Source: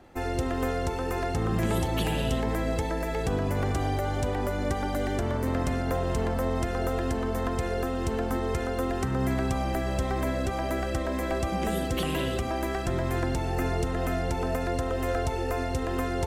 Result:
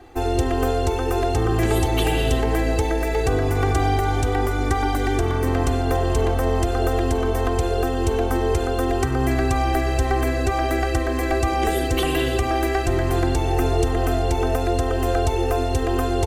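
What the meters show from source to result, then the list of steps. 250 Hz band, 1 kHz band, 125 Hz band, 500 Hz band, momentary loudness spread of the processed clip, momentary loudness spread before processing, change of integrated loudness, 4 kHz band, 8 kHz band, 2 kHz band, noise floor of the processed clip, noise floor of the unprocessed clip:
+5.5 dB, +8.0 dB, +7.0 dB, +7.5 dB, 2 LU, 2 LU, +7.5 dB, +7.5 dB, +7.5 dB, +7.0 dB, -23 dBFS, -30 dBFS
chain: comb 2.6 ms, depth 94%; thinning echo 287 ms, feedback 63%, level -18 dB; trim +4.5 dB

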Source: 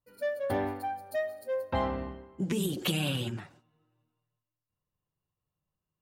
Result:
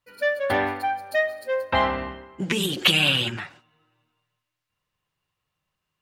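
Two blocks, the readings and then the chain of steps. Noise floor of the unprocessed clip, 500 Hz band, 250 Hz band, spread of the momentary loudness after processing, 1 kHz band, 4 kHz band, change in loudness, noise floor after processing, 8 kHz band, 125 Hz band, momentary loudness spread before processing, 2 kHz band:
under -85 dBFS, +6.5 dB, +3.5 dB, 15 LU, +9.5 dB, +15.0 dB, +10.0 dB, -82 dBFS, +6.5 dB, +2.5 dB, 8 LU, +16.0 dB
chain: peaking EQ 2.3 kHz +14.5 dB 2.9 oct; trim +2 dB

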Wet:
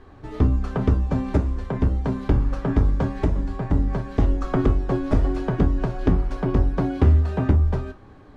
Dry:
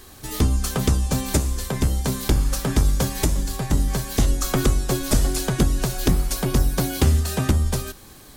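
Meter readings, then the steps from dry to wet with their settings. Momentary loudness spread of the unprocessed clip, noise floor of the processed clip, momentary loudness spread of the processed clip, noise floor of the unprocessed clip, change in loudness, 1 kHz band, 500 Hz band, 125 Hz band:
3 LU, -46 dBFS, 5 LU, -45 dBFS, -0.5 dB, -1.0 dB, +1.0 dB, +0.5 dB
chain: low-pass 1.4 kHz 12 dB/octave; gated-style reverb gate 80 ms falling, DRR 8 dB

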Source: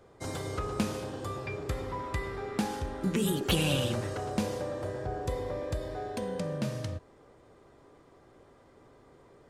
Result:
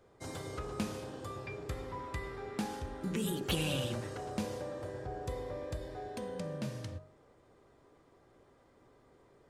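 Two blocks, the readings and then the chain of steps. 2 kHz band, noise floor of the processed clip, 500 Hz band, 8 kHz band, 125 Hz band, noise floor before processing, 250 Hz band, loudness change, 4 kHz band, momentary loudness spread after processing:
-5.5 dB, -65 dBFS, -6.0 dB, -5.5 dB, -6.0 dB, -59 dBFS, -6.0 dB, -6.0 dB, -5.5 dB, 9 LU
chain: de-hum 48.07 Hz, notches 31; trim -5.5 dB

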